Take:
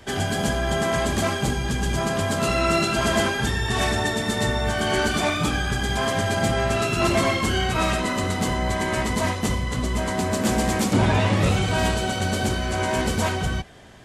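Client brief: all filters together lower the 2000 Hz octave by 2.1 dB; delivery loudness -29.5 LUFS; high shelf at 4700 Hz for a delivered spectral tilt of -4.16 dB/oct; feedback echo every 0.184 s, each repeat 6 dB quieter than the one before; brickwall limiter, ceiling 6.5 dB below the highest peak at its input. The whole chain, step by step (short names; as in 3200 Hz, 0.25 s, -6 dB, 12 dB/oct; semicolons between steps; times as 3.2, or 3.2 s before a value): bell 2000 Hz -3.5 dB; high shelf 4700 Hz +4.5 dB; limiter -14.5 dBFS; feedback echo 0.184 s, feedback 50%, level -6 dB; gain -6.5 dB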